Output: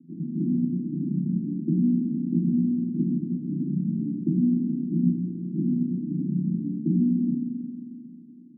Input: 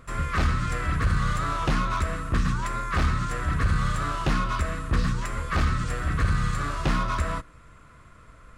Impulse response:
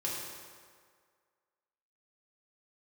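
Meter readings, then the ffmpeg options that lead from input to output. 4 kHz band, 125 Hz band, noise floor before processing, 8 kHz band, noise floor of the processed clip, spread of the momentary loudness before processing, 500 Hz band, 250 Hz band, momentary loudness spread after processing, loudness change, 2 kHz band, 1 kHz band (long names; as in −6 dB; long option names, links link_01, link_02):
below −40 dB, −2.5 dB, −51 dBFS, below −40 dB, −46 dBFS, 3 LU, −5.5 dB, +10.5 dB, 7 LU, +1.0 dB, below −40 dB, below −40 dB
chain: -filter_complex "[0:a]asuperpass=centerf=230:order=12:qfactor=1.3,asplit=2[link_01][link_02];[1:a]atrim=start_sample=2205,asetrate=29988,aresample=44100,adelay=35[link_03];[link_02][link_03]afir=irnorm=-1:irlink=0,volume=-9dB[link_04];[link_01][link_04]amix=inputs=2:normalize=0,volume=7.5dB"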